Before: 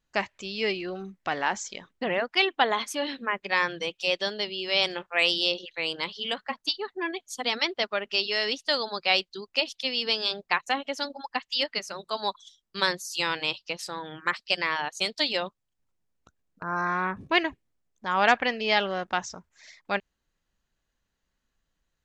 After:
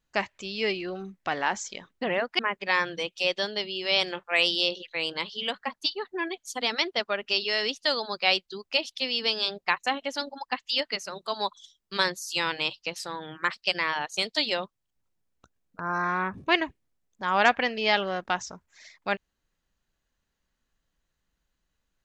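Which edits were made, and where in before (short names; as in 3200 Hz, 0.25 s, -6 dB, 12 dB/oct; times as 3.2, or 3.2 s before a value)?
2.39–3.22 cut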